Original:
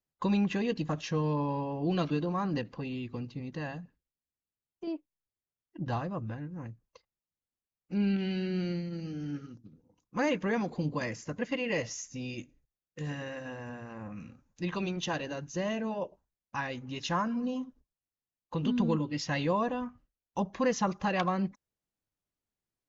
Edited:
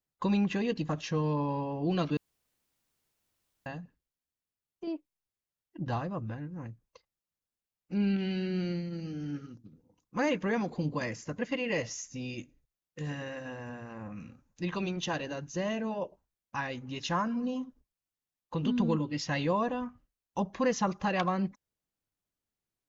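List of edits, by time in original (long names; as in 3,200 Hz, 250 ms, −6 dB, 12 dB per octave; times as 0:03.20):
0:02.17–0:03.66: fill with room tone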